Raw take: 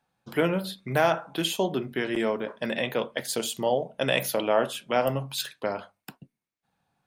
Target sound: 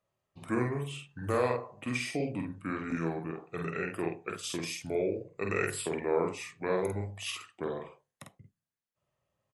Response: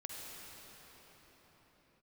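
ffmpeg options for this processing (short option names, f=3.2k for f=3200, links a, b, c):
-filter_complex "[0:a]asplit=2[a][b];[b]adelay=36,volume=-3.5dB[c];[a][c]amix=inputs=2:normalize=0,asetrate=32667,aresample=44100,volume=-8dB"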